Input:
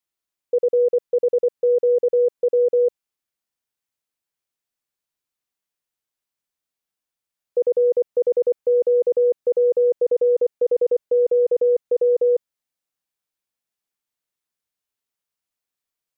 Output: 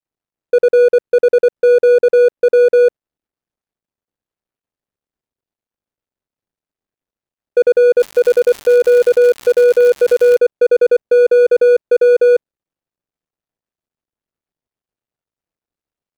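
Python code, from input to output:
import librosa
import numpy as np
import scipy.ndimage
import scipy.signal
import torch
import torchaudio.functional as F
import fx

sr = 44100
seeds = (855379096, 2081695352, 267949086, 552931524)

y = scipy.ndimage.median_filter(x, 41, mode='constant')
y = fx.dmg_crackle(y, sr, seeds[0], per_s=170.0, level_db=-27.0, at=(7.99, 10.36), fade=0.02)
y = y * 10.0 ** (9.0 / 20.0)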